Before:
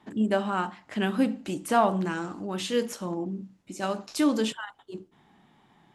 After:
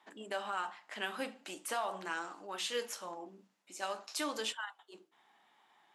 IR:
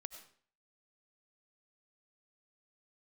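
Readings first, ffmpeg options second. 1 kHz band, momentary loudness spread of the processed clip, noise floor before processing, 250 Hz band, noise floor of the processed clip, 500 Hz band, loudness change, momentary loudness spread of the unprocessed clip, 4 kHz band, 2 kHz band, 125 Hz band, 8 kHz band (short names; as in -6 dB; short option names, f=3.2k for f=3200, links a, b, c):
-10.0 dB, 13 LU, -63 dBFS, -21.5 dB, -73 dBFS, -12.5 dB, -11.5 dB, 15 LU, -3.5 dB, -5.0 dB, -26.5 dB, -3.5 dB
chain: -filter_complex "[0:a]highpass=700,acrossover=split=3100[a][b];[a]alimiter=limit=-23dB:level=0:latency=1:release=94[c];[c][b]amix=inputs=2:normalize=0,flanger=delay=6.1:depth=7.6:regen=-72:speed=0.45:shape=sinusoidal,volume=1dB"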